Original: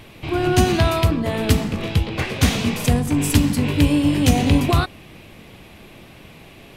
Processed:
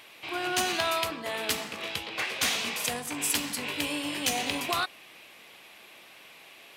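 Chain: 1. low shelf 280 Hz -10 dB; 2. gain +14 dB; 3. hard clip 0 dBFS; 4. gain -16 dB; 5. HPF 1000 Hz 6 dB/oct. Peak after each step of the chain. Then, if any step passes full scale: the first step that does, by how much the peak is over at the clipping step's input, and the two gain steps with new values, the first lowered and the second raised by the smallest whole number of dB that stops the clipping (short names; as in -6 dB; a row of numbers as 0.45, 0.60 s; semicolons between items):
-6.5, +7.5, 0.0, -16.0, -12.5 dBFS; step 2, 7.5 dB; step 2 +6 dB, step 4 -8 dB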